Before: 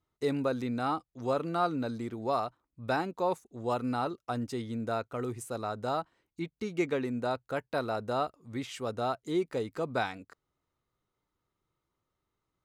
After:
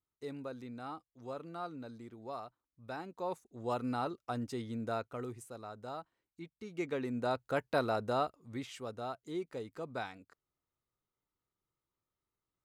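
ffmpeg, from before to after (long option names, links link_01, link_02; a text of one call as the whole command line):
ffmpeg -i in.wav -af "volume=8.5dB,afade=type=in:start_time=2.94:duration=0.83:silence=0.354813,afade=type=out:start_time=4.98:duration=0.57:silence=0.421697,afade=type=in:start_time=6.63:duration=1.05:silence=0.237137,afade=type=out:start_time=7.68:duration=1.28:silence=0.316228" out.wav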